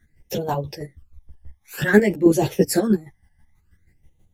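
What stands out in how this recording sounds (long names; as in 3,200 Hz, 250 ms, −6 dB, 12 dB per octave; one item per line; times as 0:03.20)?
phaser sweep stages 12, 0.53 Hz, lowest notch 410–1,700 Hz
chopped level 6.2 Hz, depth 60%, duty 30%
a shimmering, thickened sound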